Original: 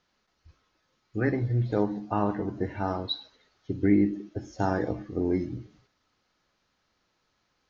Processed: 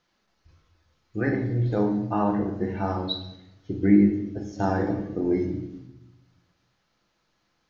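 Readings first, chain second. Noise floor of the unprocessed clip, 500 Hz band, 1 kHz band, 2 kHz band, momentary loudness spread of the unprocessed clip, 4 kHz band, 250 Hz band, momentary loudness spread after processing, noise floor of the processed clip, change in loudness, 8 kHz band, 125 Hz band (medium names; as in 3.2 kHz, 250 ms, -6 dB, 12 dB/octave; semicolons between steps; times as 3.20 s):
-75 dBFS, +2.0 dB, +2.5 dB, +2.0 dB, 13 LU, +1.5 dB, +4.5 dB, 15 LU, -72 dBFS, +3.5 dB, no reading, +2.5 dB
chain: simulated room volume 290 m³, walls mixed, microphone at 0.76 m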